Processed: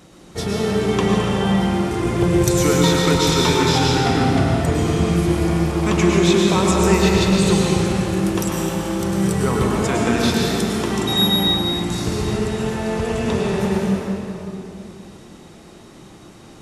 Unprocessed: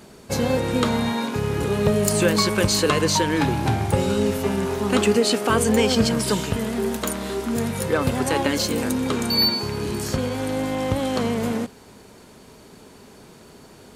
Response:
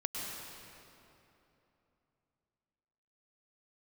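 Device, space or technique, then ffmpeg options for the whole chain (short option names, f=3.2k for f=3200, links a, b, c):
slowed and reverbed: -filter_complex "[0:a]asetrate=37044,aresample=44100[a];[1:a]atrim=start_sample=2205[b];[a][b]afir=irnorm=-1:irlink=0"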